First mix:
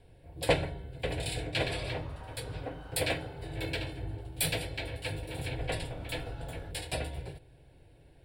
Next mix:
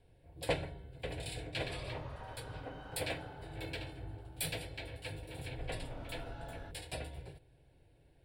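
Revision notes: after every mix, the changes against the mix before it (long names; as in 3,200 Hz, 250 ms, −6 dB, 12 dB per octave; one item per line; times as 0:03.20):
first sound −7.5 dB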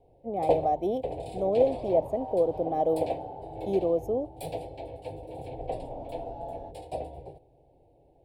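speech: unmuted
master: add drawn EQ curve 130 Hz 0 dB, 810 Hz +14 dB, 1,400 Hz −21 dB, 2,400 Hz −9 dB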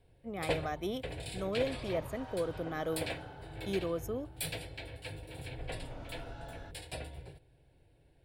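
second sound: remove high-frequency loss of the air 95 metres
master: remove drawn EQ curve 130 Hz 0 dB, 810 Hz +14 dB, 1,400 Hz −21 dB, 2,400 Hz −9 dB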